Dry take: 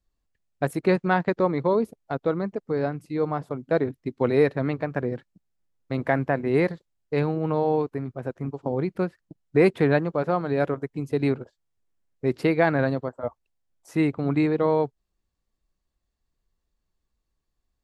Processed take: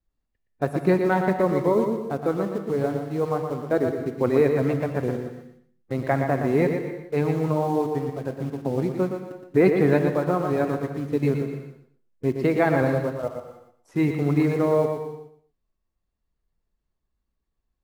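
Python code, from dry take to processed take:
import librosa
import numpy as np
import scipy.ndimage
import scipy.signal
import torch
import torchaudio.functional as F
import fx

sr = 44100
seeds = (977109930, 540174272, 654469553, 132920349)

p1 = fx.spec_quant(x, sr, step_db=15)
p2 = fx.high_shelf(p1, sr, hz=3400.0, db=-10.5)
p3 = fx.quant_dither(p2, sr, seeds[0], bits=6, dither='none')
p4 = p2 + F.gain(torch.from_numpy(p3), -11.0).numpy()
p5 = fx.vibrato(p4, sr, rate_hz=1.0, depth_cents=20.0)
p6 = p5 + fx.echo_feedback(p5, sr, ms=118, feedback_pct=23, wet_db=-6.5, dry=0)
p7 = fx.rev_gated(p6, sr, seeds[1], gate_ms=330, shape='flat', drr_db=8.0)
y = F.gain(torch.from_numpy(p7), -1.5).numpy()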